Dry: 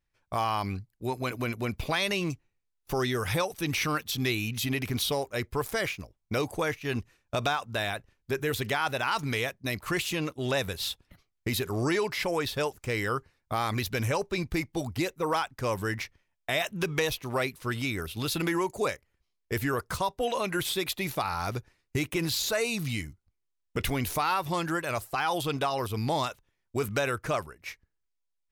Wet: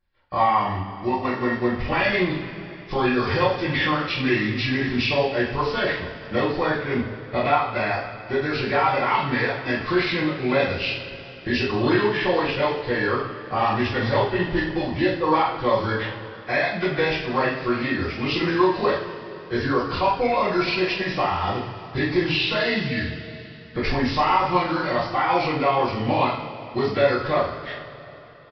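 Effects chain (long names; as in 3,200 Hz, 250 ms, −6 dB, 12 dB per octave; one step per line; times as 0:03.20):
hearing-aid frequency compression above 1,200 Hz 1.5 to 1
coupled-rooms reverb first 0.48 s, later 3.4 s, from −17 dB, DRR −8 dB
downsampling to 11,025 Hz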